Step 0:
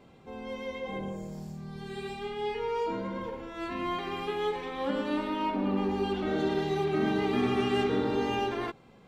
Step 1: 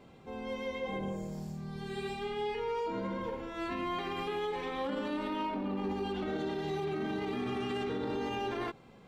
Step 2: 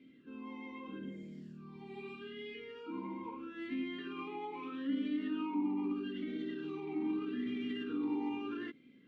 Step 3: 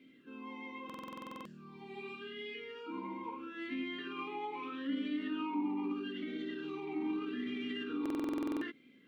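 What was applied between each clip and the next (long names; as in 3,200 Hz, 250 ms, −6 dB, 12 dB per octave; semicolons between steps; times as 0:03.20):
brickwall limiter −27.5 dBFS, peak gain reduction 11 dB
formant filter swept between two vowels i-u 0.79 Hz; level +6.5 dB
low-shelf EQ 310 Hz −9.5 dB; buffer that repeats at 0:00.85/0:08.01, samples 2,048, times 12; level +4 dB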